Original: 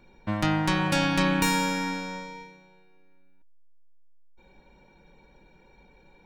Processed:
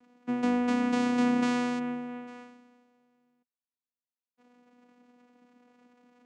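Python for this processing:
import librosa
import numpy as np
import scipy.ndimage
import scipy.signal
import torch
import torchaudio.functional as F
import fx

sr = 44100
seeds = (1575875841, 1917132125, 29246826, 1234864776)

y = fx.lowpass(x, sr, hz=1200.0, slope=12, at=(1.78, 2.26), fade=0.02)
y = fx.vocoder(y, sr, bands=4, carrier='saw', carrier_hz=245.0)
y = y * 10.0 ** (-1.5 / 20.0)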